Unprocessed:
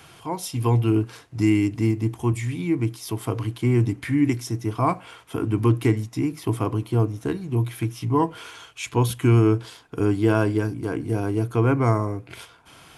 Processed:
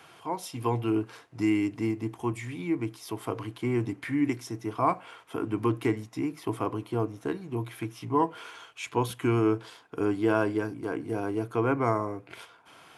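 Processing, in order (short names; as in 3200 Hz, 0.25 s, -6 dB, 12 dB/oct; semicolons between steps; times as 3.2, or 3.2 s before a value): HPF 480 Hz 6 dB/oct; high shelf 2700 Hz -9.5 dB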